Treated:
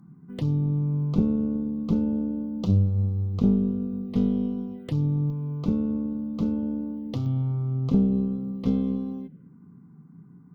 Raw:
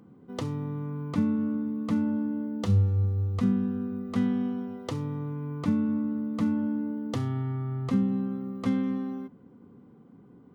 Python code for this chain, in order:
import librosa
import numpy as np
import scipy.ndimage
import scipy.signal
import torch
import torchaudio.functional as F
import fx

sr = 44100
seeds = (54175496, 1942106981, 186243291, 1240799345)

y = fx.peak_eq(x, sr, hz=160.0, db=fx.steps((0.0, 15.0), (5.3, 8.5), (7.26, 15.0)), octaves=0.51)
y = fx.tube_stage(y, sr, drive_db=13.0, bias=0.7)
y = fx.env_phaser(y, sr, low_hz=450.0, high_hz=1800.0, full_db=-30.5)
y = y * 10.0 ** (2.5 / 20.0)